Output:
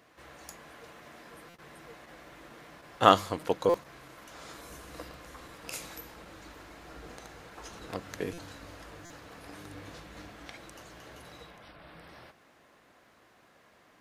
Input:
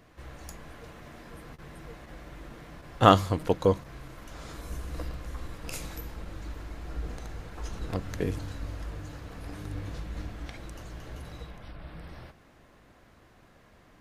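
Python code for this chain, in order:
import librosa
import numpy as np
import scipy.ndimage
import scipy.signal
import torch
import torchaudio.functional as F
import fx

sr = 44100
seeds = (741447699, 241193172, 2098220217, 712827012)

y = fx.highpass(x, sr, hz=440.0, slope=6)
y = fx.buffer_glitch(y, sr, at_s=(1.49, 3.69, 8.33, 9.05), block=256, repeats=8)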